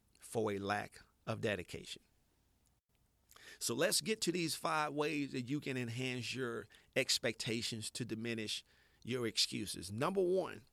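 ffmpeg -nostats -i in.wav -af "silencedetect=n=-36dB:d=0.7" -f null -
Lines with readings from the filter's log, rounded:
silence_start: 1.93
silence_end: 3.62 | silence_duration: 1.70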